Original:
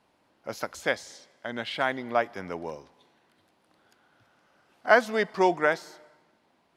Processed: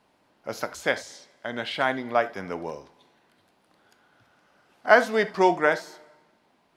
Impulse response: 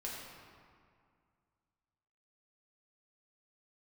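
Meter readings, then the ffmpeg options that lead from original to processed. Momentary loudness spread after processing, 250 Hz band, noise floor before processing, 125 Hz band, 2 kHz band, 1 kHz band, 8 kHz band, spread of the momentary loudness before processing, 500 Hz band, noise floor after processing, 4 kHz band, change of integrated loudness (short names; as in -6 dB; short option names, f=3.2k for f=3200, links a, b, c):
19 LU, +2.5 dB, -68 dBFS, +2.5 dB, +2.5 dB, +2.5 dB, +2.5 dB, 18 LU, +2.5 dB, -66 dBFS, +2.5 dB, +2.5 dB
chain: -filter_complex "[0:a]asplit=2[a][b];[1:a]atrim=start_sample=2205,atrim=end_sample=3969[c];[b][c]afir=irnorm=-1:irlink=0,volume=-5.5dB[d];[a][d]amix=inputs=2:normalize=0"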